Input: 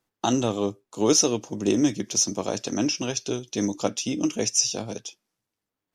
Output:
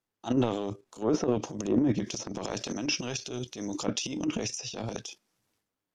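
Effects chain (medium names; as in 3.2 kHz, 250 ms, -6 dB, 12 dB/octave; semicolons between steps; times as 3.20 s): level held to a coarse grid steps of 11 dB; low-pass that closes with the level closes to 1.1 kHz, closed at -20 dBFS; transient shaper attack -11 dB, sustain +11 dB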